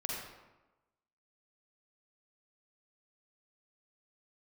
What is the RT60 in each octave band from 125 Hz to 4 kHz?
1.0, 1.1, 1.1, 1.1, 0.90, 0.65 s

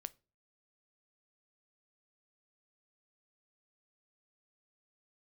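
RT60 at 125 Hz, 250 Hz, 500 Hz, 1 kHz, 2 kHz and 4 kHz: 0.50, 0.45, 0.40, 0.30, 0.25, 0.25 s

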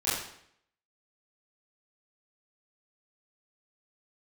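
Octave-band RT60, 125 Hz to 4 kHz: 0.70, 0.70, 0.70, 0.65, 0.65, 0.60 s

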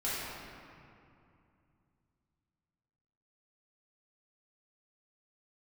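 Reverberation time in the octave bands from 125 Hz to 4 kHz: 3.7, 3.4, 2.5, 2.6, 2.2, 1.5 s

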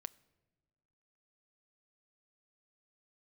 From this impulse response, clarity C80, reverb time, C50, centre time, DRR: 24.5 dB, not exponential, 22.5 dB, 2 ms, 15.5 dB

